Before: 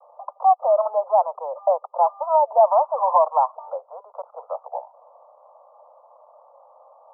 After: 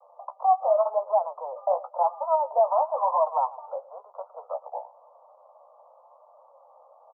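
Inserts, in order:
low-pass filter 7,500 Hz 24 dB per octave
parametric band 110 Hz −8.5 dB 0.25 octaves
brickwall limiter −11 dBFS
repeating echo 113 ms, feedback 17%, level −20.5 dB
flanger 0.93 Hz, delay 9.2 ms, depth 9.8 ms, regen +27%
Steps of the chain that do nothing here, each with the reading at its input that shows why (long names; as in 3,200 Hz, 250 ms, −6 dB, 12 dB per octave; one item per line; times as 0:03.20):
low-pass filter 7,500 Hz: nothing at its input above 1,400 Hz
parametric band 110 Hz: nothing at its input below 450 Hz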